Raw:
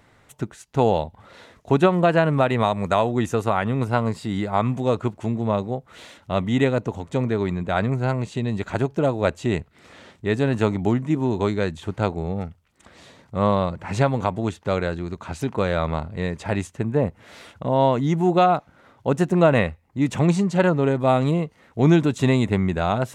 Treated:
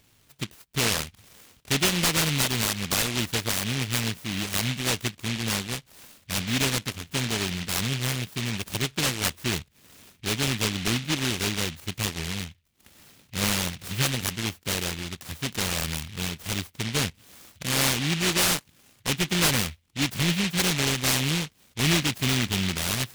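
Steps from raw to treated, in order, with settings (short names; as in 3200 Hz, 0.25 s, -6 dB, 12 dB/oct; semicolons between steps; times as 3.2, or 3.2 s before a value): in parallel at -12 dB: wrapped overs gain 12 dB; on the sum: noise-modulated delay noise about 2700 Hz, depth 0.49 ms; gain -7 dB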